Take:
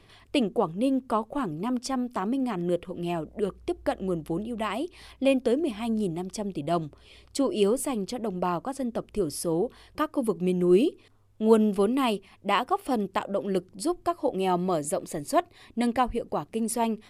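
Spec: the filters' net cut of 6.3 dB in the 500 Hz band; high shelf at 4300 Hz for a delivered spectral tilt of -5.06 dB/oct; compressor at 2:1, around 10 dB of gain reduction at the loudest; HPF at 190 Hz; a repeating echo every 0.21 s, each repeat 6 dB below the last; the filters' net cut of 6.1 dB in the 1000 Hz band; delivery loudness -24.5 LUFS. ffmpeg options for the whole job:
-af "highpass=190,equalizer=f=500:t=o:g=-7,equalizer=f=1k:t=o:g=-5,highshelf=f=4.3k:g=-5,acompressor=threshold=-38dB:ratio=2,aecho=1:1:210|420|630|840|1050|1260:0.501|0.251|0.125|0.0626|0.0313|0.0157,volume=13dB"

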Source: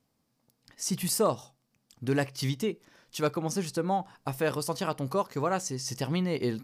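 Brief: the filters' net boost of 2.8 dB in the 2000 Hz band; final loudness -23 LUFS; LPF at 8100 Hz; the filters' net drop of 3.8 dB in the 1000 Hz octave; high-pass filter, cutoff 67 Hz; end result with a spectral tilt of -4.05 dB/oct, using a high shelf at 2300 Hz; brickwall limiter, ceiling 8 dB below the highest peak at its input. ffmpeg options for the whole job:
-af "highpass=67,lowpass=8.1k,equalizer=f=1k:t=o:g=-7,equalizer=f=2k:t=o:g=3.5,highshelf=f=2.3k:g=5,volume=10.5dB,alimiter=limit=-12dB:level=0:latency=1"

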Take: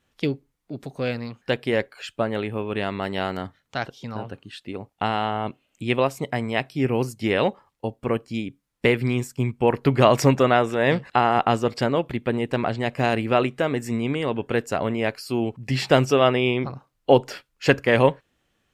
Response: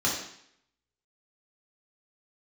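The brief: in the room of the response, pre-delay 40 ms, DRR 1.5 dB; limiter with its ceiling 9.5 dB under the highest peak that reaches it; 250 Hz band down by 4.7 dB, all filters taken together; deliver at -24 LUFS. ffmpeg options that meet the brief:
-filter_complex "[0:a]equalizer=f=250:t=o:g=-6,alimiter=limit=-12dB:level=0:latency=1,asplit=2[a][b];[1:a]atrim=start_sample=2205,adelay=40[c];[b][c]afir=irnorm=-1:irlink=0,volume=-12.5dB[d];[a][d]amix=inputs=2:normalize=0"

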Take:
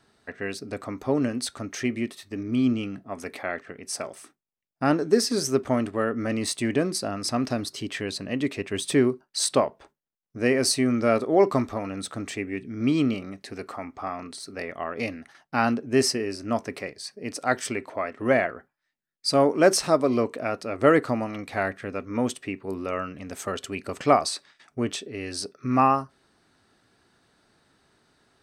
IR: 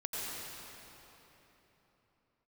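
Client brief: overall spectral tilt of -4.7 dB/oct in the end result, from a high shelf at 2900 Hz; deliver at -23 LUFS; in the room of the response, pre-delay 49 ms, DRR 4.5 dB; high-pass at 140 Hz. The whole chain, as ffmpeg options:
-filter_complex "[0:a]highpass=140,highshelf=f=2.9k:g=-4.5,asplit=2[a][b];[1:a]atrim=start_sample=2205,adelay=49[c];[b][c]afir=irnorm=-1:irlink=0,volume=-8.5dB[d];[a][d]amix=inputs=2:normalize=0,volume=2.5dB"

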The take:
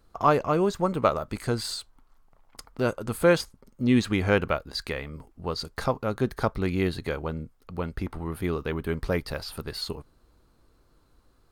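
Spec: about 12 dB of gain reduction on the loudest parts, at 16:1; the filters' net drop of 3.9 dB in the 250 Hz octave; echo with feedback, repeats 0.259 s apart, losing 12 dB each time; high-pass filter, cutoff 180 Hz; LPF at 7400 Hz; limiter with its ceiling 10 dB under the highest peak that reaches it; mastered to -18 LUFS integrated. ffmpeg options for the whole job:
-af "highpass=180,lowpass=7.4k,equalizer=f=250:t=o:g=-3.5,acompressor=threshold=-27dB:ratio=16,alimiter=limit=-23.5dB:level=0:latency=1,aecho=1:1:259|518|777:0.251|0.0628|0.0157,volume=19dB"

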